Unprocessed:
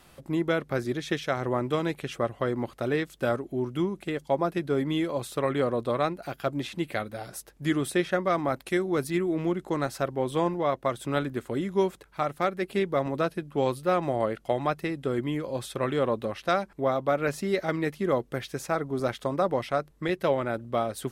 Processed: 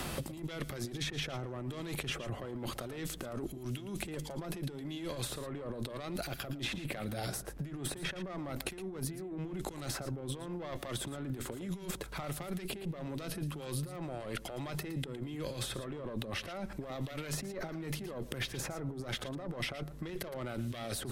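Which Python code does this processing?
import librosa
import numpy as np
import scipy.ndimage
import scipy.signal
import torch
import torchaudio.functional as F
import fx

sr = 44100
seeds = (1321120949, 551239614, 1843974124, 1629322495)

y = fx.diode_clip(x, sr, knee_db=-24.5)
y = fx.low_shelf(y, sr, hz=440.0, db=6.0)
y = fx.over_compress(y, sr, threshold_db=-38.0, ratio=-1.0)
y = y + 10.0 ** (-14.5 / 20.0) * np.pad(y, (int(113 * sr / 1000.0), 0))[:len(y)]
y = fx.band_squash(y, sr, depth_pct=100)
y = y * 10.0 ** (-3.5 / 20.0)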